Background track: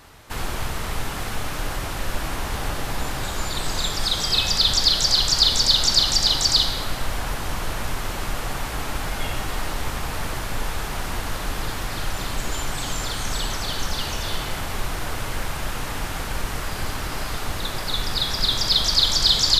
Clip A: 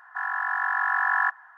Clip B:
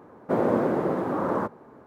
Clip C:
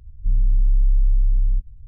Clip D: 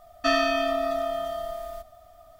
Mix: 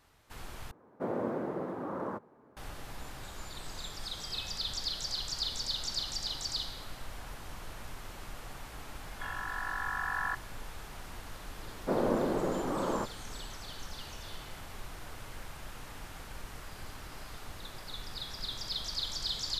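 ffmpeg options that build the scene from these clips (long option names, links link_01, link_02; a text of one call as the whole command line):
ffmpeg -i bed.wav -i cue0.wav -i cue1.wav -filter_complex "[2:a]asplit=2[link_01][link_02];[0:a]volume=-17.5dB,asplit=2[link_03][link_04];[link_03]atrim=end=0.714[link_05];[link_01]atrim=end=1.86,asetpts=PTS-STARTPTS,volume=-11dB[link_06];[link_04]atrim=start=2.566[link_07];[1:a]atrim=end=1.57,asetpts=PTS-STARTPTS,volume=-11dB,afade=type=in:duration=0.004:curve=hsin,afade=type=out:start_time=1.566:duration=0.004:curve=hsin,adelay=9050[link_08];[link_02]atrim=end=1.86,asetpts=PTS-STARTPTS,volume=-6.5dB,afade=type=in:duration=0.004:curve=hsin,afade=type=out:start_time=1.856:duration=0.004:curve=hsin,adelay=11580[link_09];[link_05][link_06]acrossfade=duration=0.004:curve1=hsin:curve2=hsin[link_10];[link_10][link_07]acrossfade=duration=0.004:curve1=hsin:curve2=hsin[link_11];[link_11][link_08][link_09]amix=inputs=3:normalize=0" out.wav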